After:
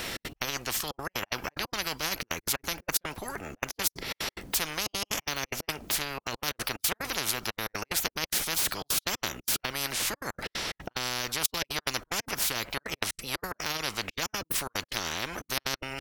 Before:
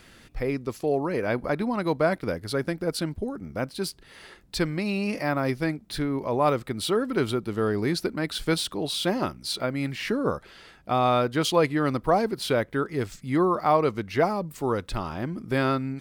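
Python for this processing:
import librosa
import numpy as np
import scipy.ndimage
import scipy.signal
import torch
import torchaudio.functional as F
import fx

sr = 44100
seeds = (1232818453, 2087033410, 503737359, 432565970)

y = fx.step_gate(x, sr, bpm=182, pattern='xx.x.xxxxxx.x.x.', floor_db=-60.0, edge_ms=4.5)
y = fx.formant_shift(y, sr, semitones=3)
y = fx.spectral_comp(y, sr, ratio=10.0)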